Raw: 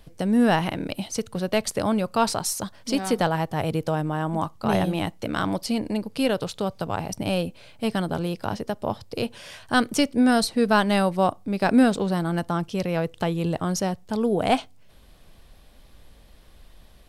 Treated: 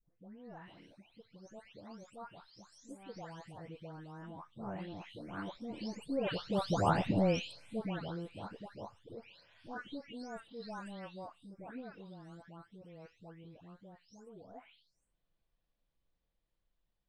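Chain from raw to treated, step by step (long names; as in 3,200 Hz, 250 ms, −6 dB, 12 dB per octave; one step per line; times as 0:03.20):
every frequency bin delayed by itself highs late, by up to 492 ms
source passing by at 0:06.94, 6 m/s, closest 1.3 metres
Bessel low-pass filter 5,300 Hz, order 4
level +1 dB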